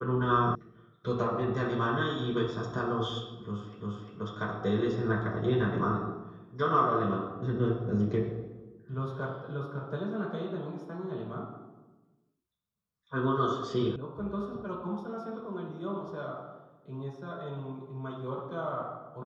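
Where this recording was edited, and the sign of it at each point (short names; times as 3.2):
0.55 sound cut off
3.81 repeat of the last 0.35 s
13.96 sound cut off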